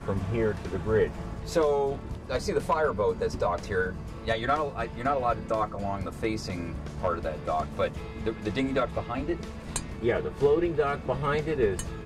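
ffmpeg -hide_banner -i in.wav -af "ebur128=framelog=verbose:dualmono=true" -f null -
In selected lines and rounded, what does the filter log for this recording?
Integrated loudness:
  I:         -26.0 LUFS
  Threshold: -36.0 LUFS
Loudness range:
  LRA:         3.0 LU
  Threshold: -46.4 LUFS
  LRA low:   -28.1 LUFS
  LRA high:  -25.1 LUFS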